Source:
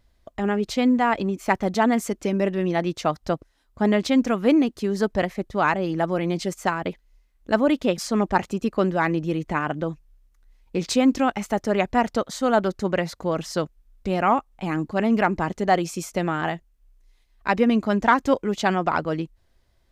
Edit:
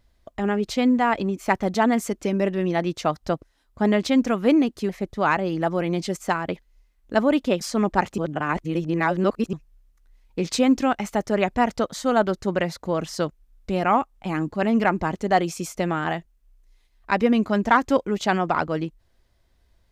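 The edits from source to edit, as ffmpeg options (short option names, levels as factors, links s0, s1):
-filter_complex "[0:a]asplit=4[s0][s1][s2][s3];[s0]atrim=end=4.892[s4];[s1]atrim=start=5.258:end=8.552[s5];[s2]atrim=start=8.548:end=9.902,asetpts=PTS-STARTPTS,areverse[s6];[s3]atrim=start=9.898[s7];[s4][s5]acrossfade=d=0.004:c1=hsin:c2=hsin[s8];[s8][s6]acrossfade=d=0.004:c1=hsin:c2=hsin[s9];[s9][s7]acrossfade=d=0.004:c1=hsin:c2=hsin"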